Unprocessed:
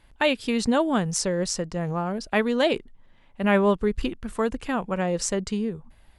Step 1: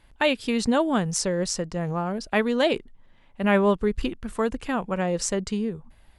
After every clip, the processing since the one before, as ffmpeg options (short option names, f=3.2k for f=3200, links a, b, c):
-af anull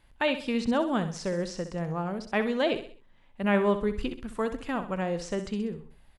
-filter_complex "[0:a]aecho=1:1:64|128|192|256:0.282|0.113|0.0451|0.018,acrossover=split=4500[a][b];[b]acompressor=threshold=-47dB:ratio=4:attack=1:release=60[c];[a][c]amix=inputs=2:normalize=0,volume=-4.5dB"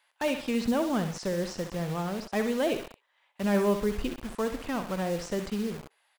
-filter_complex "[0:a]acrossover=split=640[a][b];[a]acrusher=bits=6:mix=0:aa=0.000001[c];[b]asoftclip=type=tanh:threshold=-29.5dB[d];[c][d]amix=inputs=2:normalize=0"